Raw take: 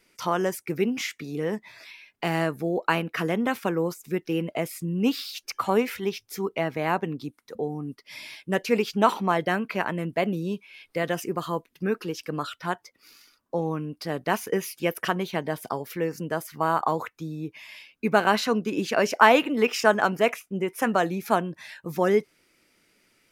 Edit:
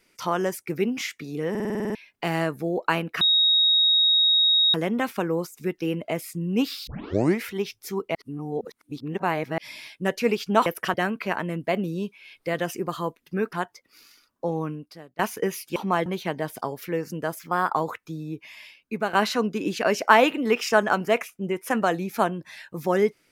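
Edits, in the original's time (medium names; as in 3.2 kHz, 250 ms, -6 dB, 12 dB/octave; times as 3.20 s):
1.50 s: stutter in place 0.05 s, 9 plays
3.21 s: add tone 3.77 kHz -16 dBFS 1.53 s
5.34 s: tape start 0.56 s
6.62–8.05 s: reverse
9.13–9.43 s: swap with 14.86–15.14 s
12.02–12.63 s: delete
13.80–14.29 s: fade out quadratic, to -23.5 dB
16.47–16.85 s: speed 111%
17.66–18.25 s: fade out, to -8 dB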